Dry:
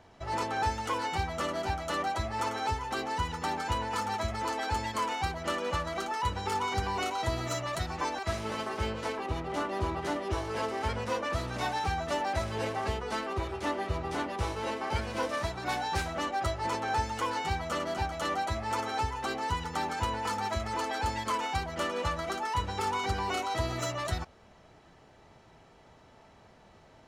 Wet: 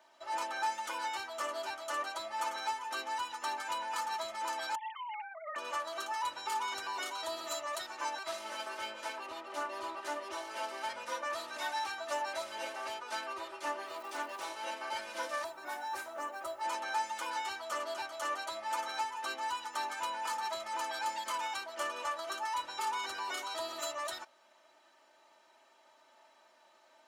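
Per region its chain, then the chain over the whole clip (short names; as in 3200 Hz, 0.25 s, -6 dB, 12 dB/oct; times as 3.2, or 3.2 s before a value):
4.75–5.56 sine-wave speech + compressor 4:1, threshold -35 dBFS
13.85–14.43 HPF 120 Hz 24 dB/oct + crackle 460/s -45 dBFS
15.44–16.61 bell 4100 Hz -11 dB 2.1 oct + companded quantiser 8-bit
whole clip: HPF 650 Hz 12 dB/oct; high shelf 9200 Hz +6.5 dB; comb 3.3 ms, depth 85%; gain -6 dB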